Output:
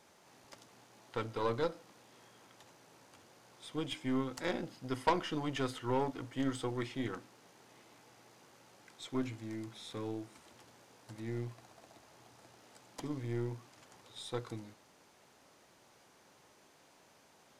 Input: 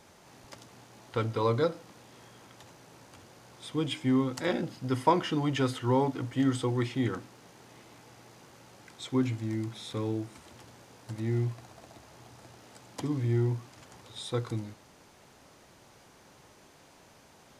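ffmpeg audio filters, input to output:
-af "lowshelf=f=130:g=-12,aeval=exprs='0.299*(cos(1*acos(clip(val(0)/0.299,-1,1)))-cos(1*PI/2))+0.0944*(cos(4*acos(clip(val(0)/0.299,-1,1)))-cos(4*PI/2))+0.075*(cos(6*acos(clip(val(0)/0.299,-1,1)))-cos(6*PI/2))':c=same,volume=0.501"

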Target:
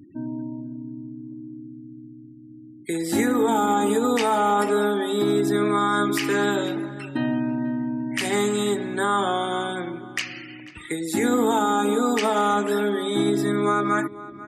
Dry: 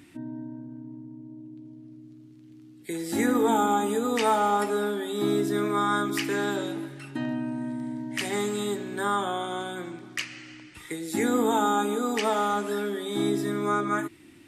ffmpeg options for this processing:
-filter_complex "[0:a]afftfilt=real='re*gte(hypot(re,im),0.00562)':imag='im*gte(hypot(re,im),0.00562)':win_size=1024:overlap=0.75,asplit=2[s0][s1];[s1]adelay=490,lowpass=f=2200:p=1,volume=0.126,asplit=2[s2][s3];[s3]adelay=490,lowpass=f=2200:p=1,volume=0.25[s4];[s0][s2][s4]amix=inputs=3:normalize=0,alimiter=limit=0.119:level=0:latency=1:release=62,volume=2"

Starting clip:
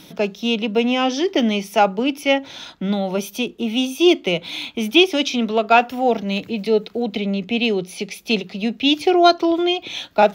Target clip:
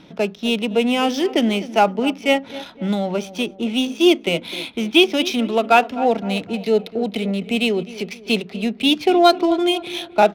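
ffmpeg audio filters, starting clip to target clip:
-filter_complex "[0:a]adynamicsmooth=sensitivity=6.5:basefreq=2400,asplit=2[s0][s1];[s1]adelay=256,lowpass=f=1600:p=1,volume=0.168,asplit=2[s2][s3];[s3]adelay=256,lowpass=f=1600:p=1,volume=0.5,asplit=2[s4][s5];[s5]adelay=256,lowpass=f=1600:p=1,volume=0.5,asplit=2[s6][s7];[s7]adelay=256,lowpass=f=1600:p=1,volume=0.5,asplit=2[s8][s9];[s9]adelay=256,lowpass=f=1600:p=1,volume=0.5[s10];[s0][s2][s4][s6][s8][s10]amix=inputs=6:normalize=0"

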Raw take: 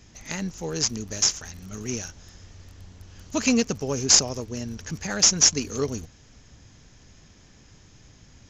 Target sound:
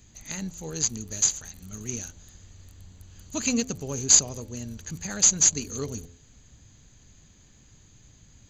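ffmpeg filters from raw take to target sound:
-af "asuperstop=centerf=5400:order=4:qfactor=4.1,bass=f=250:g=5,treble=f=4000:g=11,bandreject=f=85.51:t=h:w=4,bandreject=f=171.02:t=h:w=4,bandreject=f=256.53:t=h:w=4,bandreject=f=342.04:t=h:w=4,bandreject=f=427.55:t=h:w=4,bandreject=f=513.06:t=h:w=4,bandreject=f=598.57:t=h:w=4,bandreject=f=684.08:t=h:w=4,bandreject=f=769.59:t=h:w=4,bandreject=f=855.1:t=h:w=4,volume=0.447"

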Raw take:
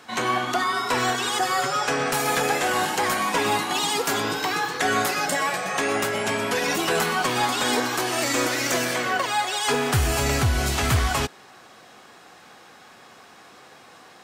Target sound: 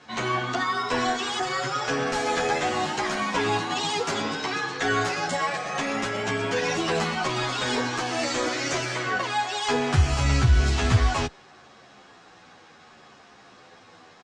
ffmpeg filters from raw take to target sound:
-filter_complex "[0:a]lowpass=f=6900:w=0.5412,lowpass=f=6900:w=1.3066,lowshelf=f=140:g=8,asplit=2[s0][s1];[s1]adelay=10.7,afreqshift=-0.69[s2];[s0][s2]amix=inputs=2:normalize=1"

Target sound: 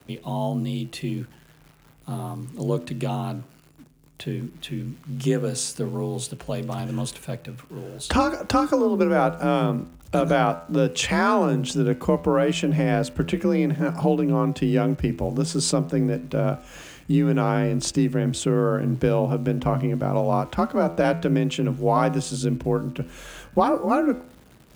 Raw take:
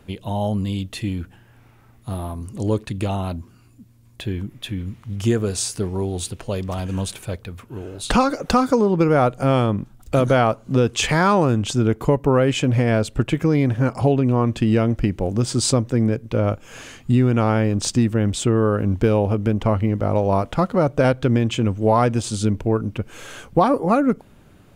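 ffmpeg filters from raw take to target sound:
-af "acrusher=bits=9:dc=4:mix=0:aa=0.000001,afreqshift=37,bandreject=f=83.94:t=h:w=4,bandreject=f=167.88:t=h:w=4,bandreject=f=251.82:t=h:w=4,bandreject=f=335.76:t=h:w=4,bandreject=f=419.7:t=h:w=4,bandreject=f=503.64:t=h:w=4,bandreject=f=587.58:t=h:w=4,bandreject=f=671.52:t=h:w=4,bandreject=f=755.46:t=h:w=4,bandreject=f=839.4:t=h:w=4,bandreject=f=923.34:t=h:w=4,bandreject=f=1007.28:t=h:w=4,bandreject=f=1091.22:t=h:w=4,bandreject=f=1175.16:t=h:w=4,bandreject=f=1259.1:t=h:w=4,bandreject=f=1343.04:t=h:w=4,bandreject=f=1426.98:t=h:w=4,bandreject=f=1510.92:t=h:w=4,bandreject=f=1594.86:t=h:w=4,bandreject=f=1678.8:t=h:w=4,bandreject=f=1762.74:t=h:w=4,bandreject=f=1846.68:t=h:w=4,bandreject=f=1930.62:t=h:w=4,bandreject=f=2014.56:t=h:w=4,bandreject=f=2098.5:t=h:w=4,bandreject=f=2182.44:t=h:w=4,bandreject=f=2266.38:t=h:w=4,bandreject=f=2350.32:t=h:w=4,bandreject=f=2434.26:t=h:w=4,bandreject=f=2518.2:t=h:w=4,bandreject=f=2602.14:t=h:w=4,bandreject=f=2686.08:t=h:w=4,bandreject=f=2770.02:t=h:w=4,bandreject=f=2853.96:t=h:w=4,bandreject=f=2937.9:t=h:w=4,volume=0.708"

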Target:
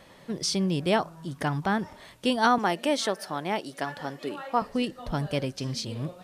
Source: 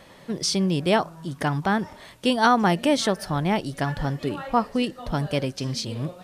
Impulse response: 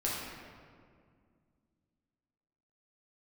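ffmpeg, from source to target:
-filter_complex "[0:a]asettb=1/sr,asplit=3[s0][s1][s2];[s0]atrim=end=2.584[s3];[s1]atrim=start=2.58:end=4.62,asetpts=PTS-STARTPTS,afade=t=in:d=0.004:c=qsin,afade=t=out:st=2.036:d=0.004:c=qsin,highpass=300[s4];[s2]atrim=start=4.616[s5];[s3][s4]acrossfade=d=0.004:c1=hsin:c2=qsin[s6];[s6][s5]acrossfade=d=0.004:c1=qsin:c2=hsin,volume=0.668"

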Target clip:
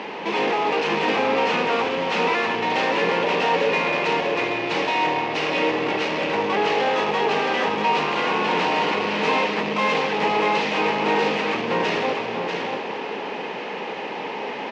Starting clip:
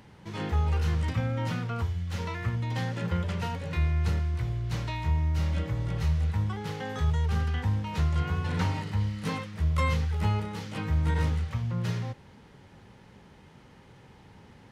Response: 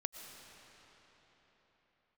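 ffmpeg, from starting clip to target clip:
-filter_complex "[0:a]asplit=2[s0][s1];[s1]asetrate=35002,aresample=44100,atempo=1.25992,volume=0.398[s2];[s0][s2]amix=inputs=2:normalize=0,asplit=2[s3][s4];[s4]highpass=f=720:p=1,volume=56.2,asoftclip=type=tanh:threshold=0.2[s5];[s3][s5]amix=inputs=2:normalize=0,lowpass=f=1600:p=1,volume=0.501,highpass=f=220:w=0.5412,highpass=f=220:w=1.3066,equalizer=f=450:t=q:w=4:g=6,equalizer=f=900:t=q:w=4:g=3,equalizer=f=1400:t=q:w=4:g=-7,equalizer=f=2600:t=q:w=4:g=8,lowpass=f=6100:w=0.5412,lowpass=f=6100:w=1.3066,aecho=1:1:641:0.596,asplit=2[s6][s7];[1:a]atrim=start_sample=2205[s8];[s7][s8]afir=irnorm=-1:irlink=0,volume=1.68[s9];[s6][s9]amix=inputs=2:normalize=0,volume=0.422"

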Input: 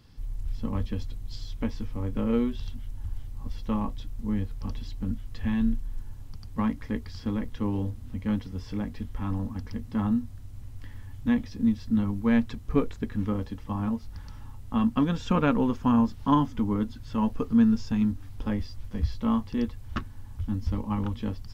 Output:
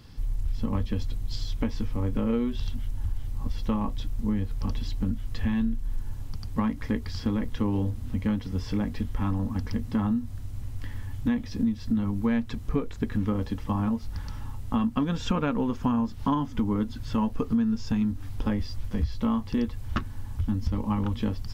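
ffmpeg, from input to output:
-af "acompressor=threshold=0.0355:ratio=6,volume=2.11"

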